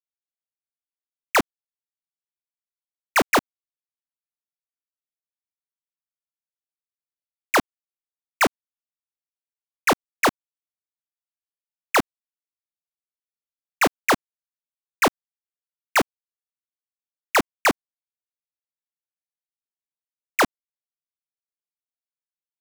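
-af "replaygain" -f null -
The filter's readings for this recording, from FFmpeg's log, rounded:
track_gain = +5.6 dB
track_peak = 0.160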